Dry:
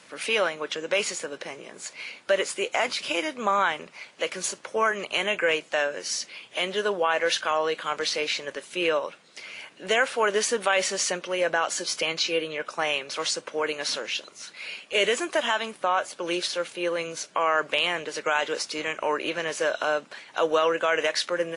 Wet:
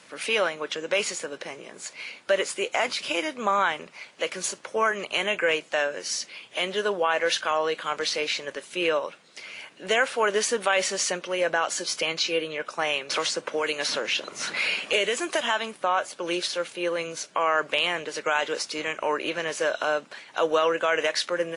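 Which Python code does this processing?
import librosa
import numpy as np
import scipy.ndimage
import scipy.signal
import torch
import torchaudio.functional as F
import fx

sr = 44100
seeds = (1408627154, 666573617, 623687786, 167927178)

y = fx.band_squash(x, sr, depth_pct=100, at=(13.1, 15.41))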